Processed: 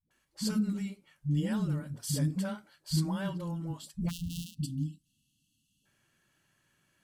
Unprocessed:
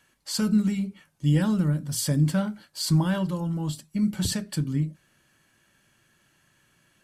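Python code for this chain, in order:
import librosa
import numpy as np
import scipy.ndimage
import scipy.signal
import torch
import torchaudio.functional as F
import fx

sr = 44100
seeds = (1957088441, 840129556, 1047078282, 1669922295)

y = fx.sample_sort(x, sr, block=256, at=(3.97, 4.43), fade=0.02)
y = fx.spec_erase(y, sr, start_s=4.0, length_s=1.75, low_hz=320.0, high_hz=2600.0)
y = fx.dispersion(y, sr, late='highs', ms=109.0, hz=320.0)
y = y * librosa.db_to_amplitude(-8.0)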